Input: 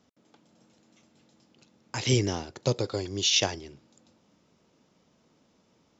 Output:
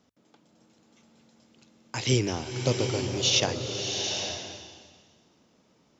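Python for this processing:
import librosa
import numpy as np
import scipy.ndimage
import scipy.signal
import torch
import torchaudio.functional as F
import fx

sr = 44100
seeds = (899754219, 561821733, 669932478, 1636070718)

y = fx.rattle_buzz(x, sr, strikes_db=-33.0, level_db=-32.0)
y = fx.hum_notches(y, sr, base_hz=50, count=2)
y = fx.rev_bloom(y, sr, seeds[0], attack_ms=820, drr_db=3.5)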